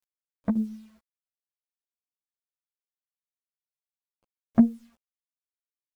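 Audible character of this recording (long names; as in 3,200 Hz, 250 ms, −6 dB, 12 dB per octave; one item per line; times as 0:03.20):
a quantiser's noise floor 10 bits, dither none
tremolo saw down 1.8 Hz, depth 60%
a shimmering, thickened sound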